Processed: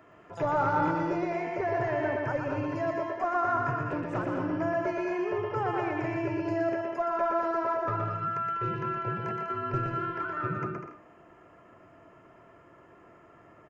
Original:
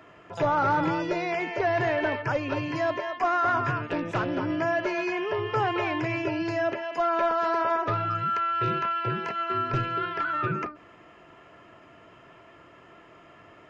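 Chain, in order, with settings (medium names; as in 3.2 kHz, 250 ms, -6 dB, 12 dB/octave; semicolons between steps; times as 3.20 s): peaking EQ 3.6 kHz -7.5 dB 1.4 oct, from 0.91 s -13.5 dB; bouncing-ball echo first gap 120 ms, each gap 0.65×, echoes 5; trim -4 dB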